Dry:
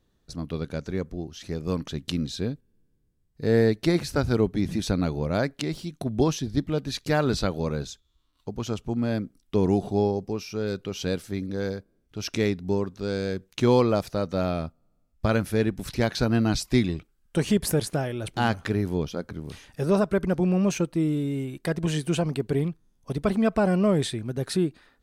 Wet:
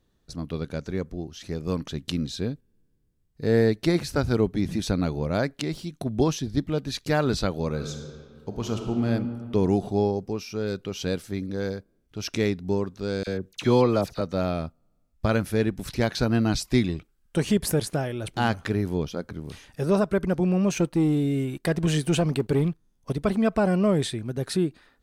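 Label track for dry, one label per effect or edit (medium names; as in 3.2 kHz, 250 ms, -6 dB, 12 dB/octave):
7.680000	9.070000	reverb throw, RT60 2 s, DRR 3.5 dB
13.230000	14.210000	phase dispersion lows, late by 41 ms, half as late at 1.9 kHz
20.770000	23.120000	waveshaping leveller passes 1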